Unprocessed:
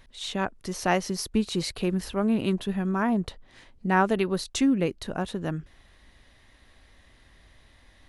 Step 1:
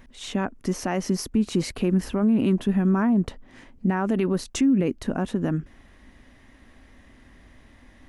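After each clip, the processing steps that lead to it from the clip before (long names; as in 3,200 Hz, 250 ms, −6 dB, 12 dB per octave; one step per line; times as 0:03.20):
graphic EQ with 15 bands 250 Hz +10 dB, 4,000 Hz −9 dB, 10,000 Hz −5 dB
brickwall limiter −18 dBFS, peak gain reduction 11.5 dB
level +4 dB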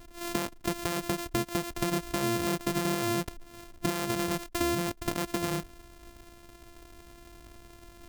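samples sorted by size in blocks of 128 samples
high-shelf EQ 5,500 Hz +5.5 dB
downward compressor 6 to 1, threshold −27 dBFS, peak gain reduction 10.5 dB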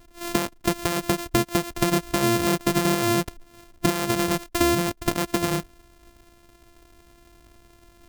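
expander for the loud parts 1.5 to 1, over −48 dBFS
level +9 dB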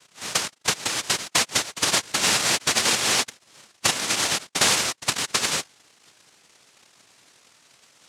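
cochlear-implant simulation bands 1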